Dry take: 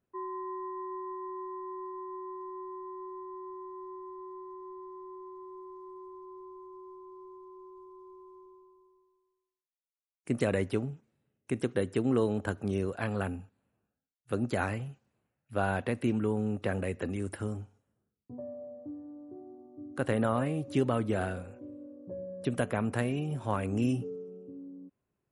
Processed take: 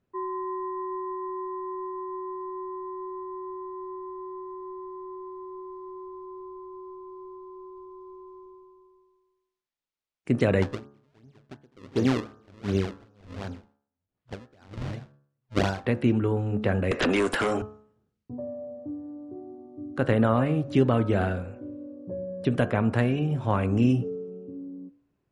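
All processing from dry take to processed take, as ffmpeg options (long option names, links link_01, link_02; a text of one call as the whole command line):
ffmpeg -i in.wav -filter_complex "[0:a]asettb=1/sr,asplit=3[link_01][link_02][link_03];[link_01]atrim=end=10.624[link_04];[link_02]atrim=start=10.62:end=15.86,asetpts=PTS-STARTPTS,afade=type=in:duration=0.004:curve=qsin,afade=type=out:start_time=5.236:duration=0.004:curve=qsin,aecho=1:1:204|408|612:0.376|0.0864|0.0199,atrim=end_sample=231084,acrusher=samples=33:mix=1:aa=0.000001:lfo=1:lforange=52.8:lforate=2.7,aeval=exprs='val(0)*pow(10,-35*(0.5-0.5*cos(2*PI*1.4*n/s))/20)':channel_layout=same[link_05];[link_03]atrim=start=15.856[link_06];[link_04][link_05]acrossfade=duration=0.004:curve1=hsin:curve2=qsin[link_07];[link_07][link_06]acrossfade=duration=0.004:curve1=qsin:curve2=hsin,asettb=1/sr,asplit=3[link_08][link_09][link_10];[link_08]atrim=end=16.914[link_11];[link_09]atrim=start=16.91:end=17.62,asetpts=PTS-STARTPTS,afade=type=in:duration=0.004:curve=qsin,afade=type=out:start_time=0.706:duration=0.004:curve=qsin,highpass=490,aeval=exprs='0.0596*sin(PI/2*5.01*val(0)/0.0596)':channel_layout=same[link_12];[link_10]atrim=start=17.616[link_13];[link_11][link_12]acrossfade=duration=0.004:curve1=hsin:curve2=qsin[link_14];[link_14][link_13]acrossfade=duration=0.004:curve1=qsin:curve2=hsin,lowpass=5000,lowshelf=frequency=200:gain=4,bandreject=frequency=71.07:width_type=h:width=4,bandreject=frequency=142.14:width_type=h:width=4,bandreject=frequency=213.21:width_type=h:width=4,bandreject=frequency=284.28:width_type=h:width=4,bandreject=frequency=355.35:width_type=h:width=4,bandreject=frequency=426.42:width_type=h:width=4,bandreject=frequency=497.49:width_type=h:width=4,bandreject=frequency=568.56:width_type=h:width=4,bandreject=frequency=639.63:width_type=h:width=4,bandreject=frequency=710.7:width_type=h:width=4,bandreject=frequency=781.77:width_type=h:width=4,bandreject=frequency=852.84:width_type=h:width=4,bandreject=frequency=923.91:width_type=h:width=4,bandreject=frequency=994.98:width_type=h:width=4,bandreject=frequency=1066.05:width_type=h:width=4,bandreject=frequency=1137.12:width_type=h:width=4,bandreject=frequency=1208.19:width_type=h:width=4,bandreject=frequency=1279.26:width_type=h:width=4,bandreject=frequency=1350.33:width_type=h:width=4,bandreject=frequency=1421.4:width_type=h:width=4,bandreject=frequency=1492.47:width_type=h:width=4,bandreject=frequency=1563.54:width_type=h:width=4,bandreject=frequency=1634.61:width_type=h:width=4,bandreject=frequency=1705.68:width_type=h:width=4,bandreject=frequency=1776.75:width_type=h:width=4,volume=5.5dB" out.wav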